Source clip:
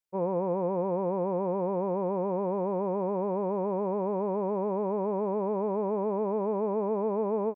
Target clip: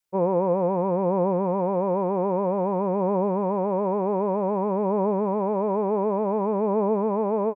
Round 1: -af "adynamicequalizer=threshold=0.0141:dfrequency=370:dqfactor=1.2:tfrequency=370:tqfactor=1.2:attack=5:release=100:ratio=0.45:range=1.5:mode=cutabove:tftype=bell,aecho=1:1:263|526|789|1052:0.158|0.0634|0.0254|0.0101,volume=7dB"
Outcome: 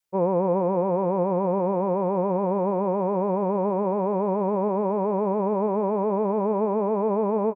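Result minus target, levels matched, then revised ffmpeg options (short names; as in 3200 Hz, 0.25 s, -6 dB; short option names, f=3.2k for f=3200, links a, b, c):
echo 0.123 s late
-af "adynamicequalizer=threshold=0.0141:dfrequency=370:dqfactor=1.2:tfrequency=370:tqfactor=1.2:attack=5:release=100:ratio=0.45:range=1.5:mode=cutabove:tftype=bell,aecho=1:1:140|280|420|560:0.158|0.0634|0.0254|0.0101,volume=7dB"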